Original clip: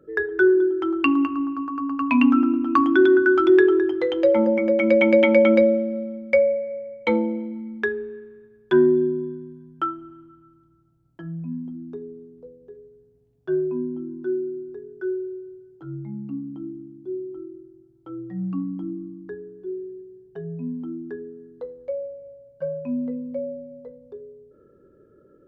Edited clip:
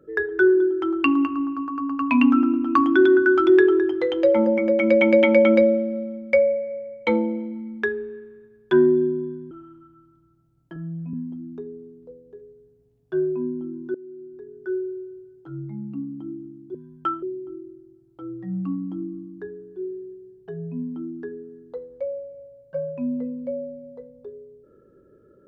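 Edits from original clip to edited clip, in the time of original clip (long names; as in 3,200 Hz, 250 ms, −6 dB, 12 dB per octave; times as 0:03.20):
0:09.51–0:09.99: move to 0:17.10
0:11.24–0:11.49: time-stretch 1.5×
0:14.30–0:15.04: fade in, from −21.5 dB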